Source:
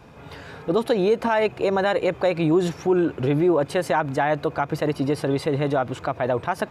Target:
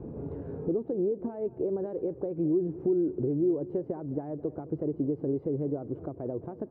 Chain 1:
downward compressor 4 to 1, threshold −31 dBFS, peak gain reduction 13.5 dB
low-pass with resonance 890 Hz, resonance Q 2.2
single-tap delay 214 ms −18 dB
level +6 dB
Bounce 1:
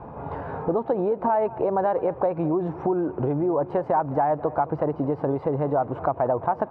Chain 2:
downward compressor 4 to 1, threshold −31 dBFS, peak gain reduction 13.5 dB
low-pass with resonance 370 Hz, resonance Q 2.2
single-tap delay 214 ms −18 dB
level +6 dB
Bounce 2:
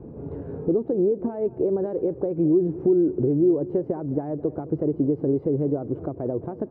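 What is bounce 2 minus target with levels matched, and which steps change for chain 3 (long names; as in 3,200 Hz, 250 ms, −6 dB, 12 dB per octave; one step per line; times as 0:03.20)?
downward compressor: peak gain reduction −7 dB
change: downward compressor 4 to 1, threshold −40.5 dBFS, peak gain reduction 20.5 dB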